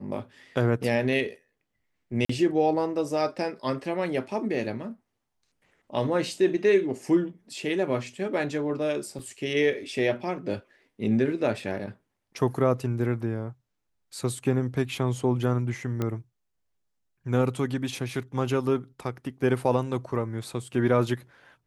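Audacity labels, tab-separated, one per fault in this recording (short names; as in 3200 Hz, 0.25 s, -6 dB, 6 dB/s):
2.250000	2.290000	gap 44 ms
9.190000	9.190000	gap 3.1 ms
16.020000	16.020000	pop -16 dBFS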